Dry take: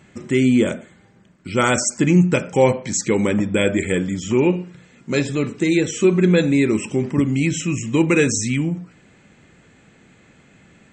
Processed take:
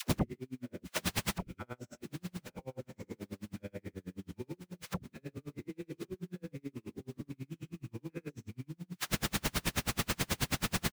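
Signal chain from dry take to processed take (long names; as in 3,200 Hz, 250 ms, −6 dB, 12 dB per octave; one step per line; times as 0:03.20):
spectrum averaged block by block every 200 ms
RIAA equalisation playback
in parallel at +1.5 dB: brickwall limiter −10 dBFS, peak gain reduction 9 dB
on the sum: downward compressor 6 to 1, threshold −13 dBFS, peak gain reduction 10.5 dB
bit-depth reduction 6 bits, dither triangular
gate with flip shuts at −17 dBFS, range −33 dB
soft clipping −30.5 dBFS, distortion −11 dB
mid-hump overdrive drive 7 dB, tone 2,700 Hz, clips at −30.5 dBFS
all-pass dispersion lows, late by 97 ms, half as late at 480 Hz
on a send: repeating echo 1,118 ms, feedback 51%, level −18 dB
on the sum: tremolo with a sine in dB 9.3 Hz, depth 39 dB
level +14 dB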